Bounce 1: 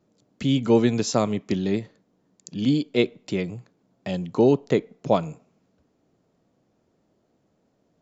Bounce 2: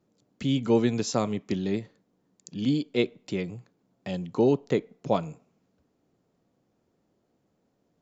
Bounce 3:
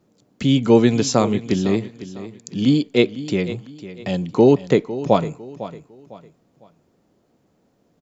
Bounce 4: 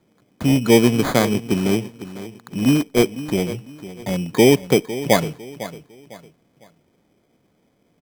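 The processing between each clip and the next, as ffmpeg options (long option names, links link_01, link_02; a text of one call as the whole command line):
ffmpeg -i in.wav -af "bandreject=frequency=630:width=20,volume=-4dB" out.wav
ffmpeg -i in.wav -af "aecho=1:1:503|1006|1509:0.188|0.0603|0.0193,volume=9dB" out.wav
ffmpeg -i in.wav -af "acrusher=samples=16:mix=1:aa=0.000001" out.wav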